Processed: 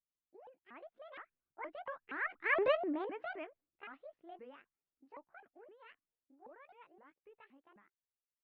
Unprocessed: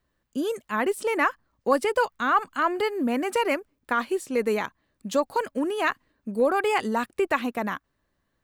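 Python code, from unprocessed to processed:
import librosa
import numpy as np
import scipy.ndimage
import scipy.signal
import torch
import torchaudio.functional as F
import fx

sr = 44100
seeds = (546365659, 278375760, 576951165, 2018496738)

y = fx.pitch_ramps(x, sr, semitones=11.0, every_ms=247)
y = fx.doppler_pass(y, sr, speed_mps=17, closest_m=1.6, pass_at_s=2.66)
y = scipy.signal.sosfilt(scipy.signal.butter(4, 2500.0, 'lowpass', fs=sr, output='sos'), y)
y = fx.peak_eq(y, sr, hz=79.0, db=-7.0, octaves=0.57)
y = y * librosa.db_to_amplitude(-1.5)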